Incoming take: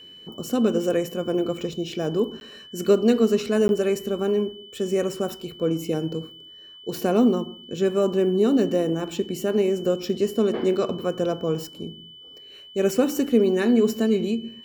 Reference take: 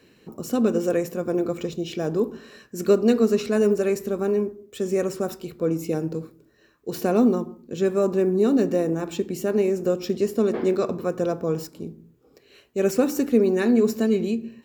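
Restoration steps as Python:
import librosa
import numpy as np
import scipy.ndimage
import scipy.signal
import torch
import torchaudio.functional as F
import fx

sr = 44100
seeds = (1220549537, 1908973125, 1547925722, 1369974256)

y = fx.notch(x, sr, hz=3000.0, q=30.0)
y = fx.fix_interpolate(y, sr, at_s=(2.4, 3.68), length_ms=11.0)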